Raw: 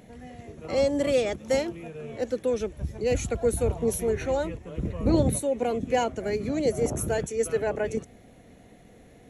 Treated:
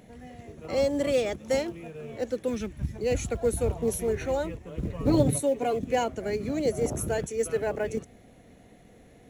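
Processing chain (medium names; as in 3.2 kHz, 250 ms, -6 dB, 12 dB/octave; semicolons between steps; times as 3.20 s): 4.92–5.79 s: comb 7 ms, depth 63%; in parallel at -12 dB: short-mantissa float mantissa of 2-bit; 2.48–2.96 s: on the sum: graphic EQ 125/250/500/2000 Hz +4/+6/-10/+4 dB; trim -3.5 dB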